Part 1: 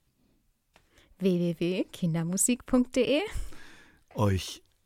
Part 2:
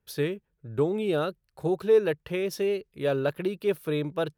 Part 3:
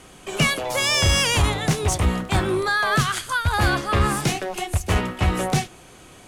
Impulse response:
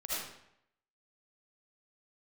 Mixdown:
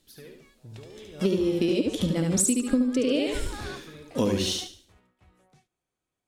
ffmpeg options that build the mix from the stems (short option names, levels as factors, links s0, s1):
-filter_complex "[0:a]equalizer=f=125:t=o:w=1:g=-10,equalizer=f=250:t=o:w=1:g=12,equalizer=f=500:t=o:w=1:g=5,equalizer=f=1000:t=o:w=1:g=-5,equalizer=f=4000:t=o:w=1:g=9,equalizer=f=8000:t=o:w=1:g=5,volume=1.33,asplit=3[s0][s1][s2];[s1]volume=0.708[s3];[1:a]acompressor=threshold=0.0224:ratio=4,aphaser=in_gain=1:out_gain=1:delay=2.1:decay=0.58:speed=1.6:type=sinusoidal,volume=0.266,asplit=2[s4][s5];[s5]volume=0.531[s6];[2:a]acrossover=split=8600[s7][s8];[s8]acompressor=threshold=0.01:ratio=4:attack=1:release=60[s9];[s7][s9]amix=inputs=2:normalize=0,bandreject=f=2900:w=17,volume=0.112[s10];[s2]apad=whole_len=276931[s11];[s10][s11]sidechaingate=range=0.0891:threshold=0.00501:ratio=16:detection=peak[s12];[s3][s6]amix=inputs=2:normalize=0,aecho=0:1:72|144|216|288|360:1|0.34|0.116|0.0393|0.0134[s13];[s0][s4][s12][s13]amix=inputs=4:normalize=0,acompressor=threshold=0.1:ratio=12"